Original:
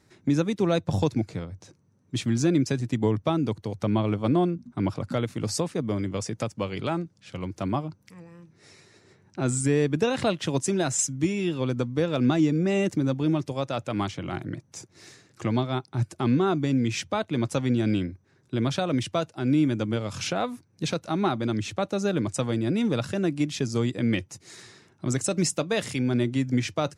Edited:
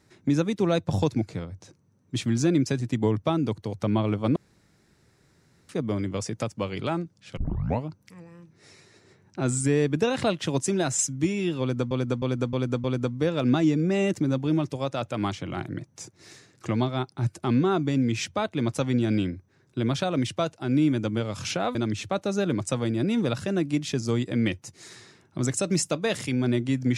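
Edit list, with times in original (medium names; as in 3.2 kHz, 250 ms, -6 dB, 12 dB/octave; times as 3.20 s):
4.36–5.69 s: room tone
7.37 s: tape start 0.49 s
11.60–11.91 s: loop, 5 plays
20.51–21.42 s: delete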